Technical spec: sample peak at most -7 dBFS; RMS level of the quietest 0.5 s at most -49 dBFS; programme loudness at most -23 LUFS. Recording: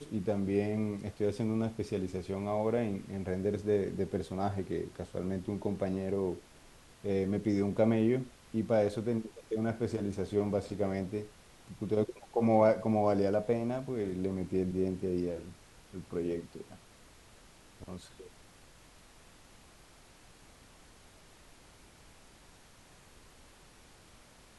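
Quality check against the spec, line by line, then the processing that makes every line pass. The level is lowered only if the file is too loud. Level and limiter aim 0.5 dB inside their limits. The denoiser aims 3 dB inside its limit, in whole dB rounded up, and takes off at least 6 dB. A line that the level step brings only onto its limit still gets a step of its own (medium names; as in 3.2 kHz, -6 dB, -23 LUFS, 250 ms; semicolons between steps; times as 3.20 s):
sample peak -13.5 dBFS: pass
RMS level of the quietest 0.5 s -58 dBFS: pass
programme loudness -33.0 LUFS: pass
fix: none needed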